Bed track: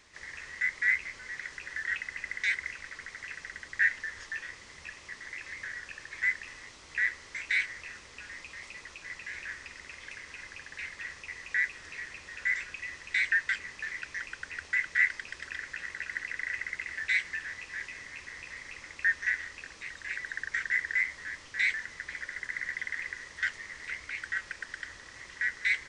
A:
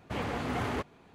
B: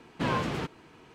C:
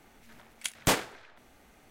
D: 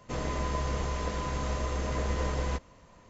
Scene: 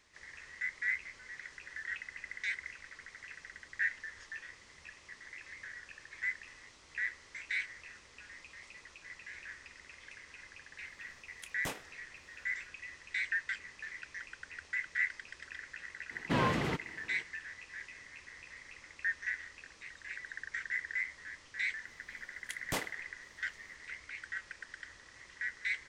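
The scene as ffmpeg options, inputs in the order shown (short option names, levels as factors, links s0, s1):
-filter_complex "[3:a]asplit=2[s0][s1];[0:a]volume=0.422[s2];[s0]bandreject=f=4500:w=12,atrim=end=1.9,asetpts=PTS-STARTPTS,volume=0.168,afade=t=in:d=0.004:c=hsin,afade=t=out:st=1.896:d=0.004:c=hsin,adelay=10780[s3];[2:a]atrim=end=1.14,asetpts=PTS-STARTPTS,volume=0.841,afade=t=in:d=0.02,afade=t=out:st=1.12:d=0.02,adelay=16100[s4];[s1]atrim=end=1.9,asetpts=PTS-STARTPTS,volume=0.266,afade=t=in:d=0.004:c=hsin,afade=t=out:st=1.896:d=0.004:c=hsin,adelay=21850[s5];[s2][s3][s4][s5]amix=inputs=4:normalize=0"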